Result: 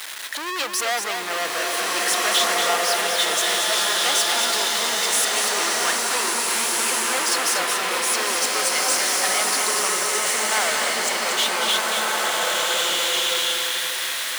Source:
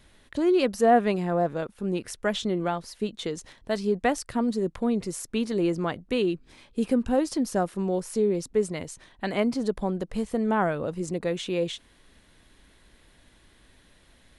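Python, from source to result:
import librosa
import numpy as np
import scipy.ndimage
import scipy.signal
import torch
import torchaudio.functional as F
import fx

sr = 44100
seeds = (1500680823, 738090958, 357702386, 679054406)

p1 = x + 0.5 * 10.0 ** (-34.5 / 20.0) * np.sign(x)
p2 = fx.leveller(p1, sr, passes=5)
p3 = scipy.signal.sosfilt(scipy.signal.butter(2, 1100.0, 'highpass', fs=sr, output='sos'), p2)
p4 = p3 + fx.echo_single(p3, sr, ms=235, db=-6.0, dry=0)
p5 = fx.rev_bloom(p4, sr, seeds[0], attack_ms=1730, drr_db=-4.0)
y = p5 * librosa.db_to_amplitude(-6.5)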